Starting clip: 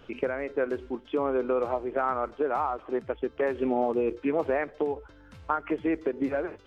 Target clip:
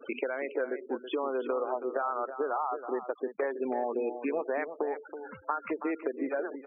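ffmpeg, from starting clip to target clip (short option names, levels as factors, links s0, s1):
-filter_complex "[0:a]asplit=2[s0][s1];[s1]highpass=f=720:p=1,volume=3.16,asoftclip=type=tanh:threshold=0.266[s2];[s0][s2]amix=inputs=2:normalize=0,lowpass=f=2700:p=1,volume=0.501,highpass=180,acompressor=threshold=0.00891:ratio=3,afftfilt=real='re*gte(hypot(re,im),0.00708)':imag='im*gte(hypot(re,im),0.00708)':win_size=1024:overlap=0.75,asplit=2[s3][s4];[s4]adelay=326.5,volume=0.316,highshelf=f=4000:g=-7.35[s5];[s3][s5]amix=inputs=2:normalize=0,volume=2.37"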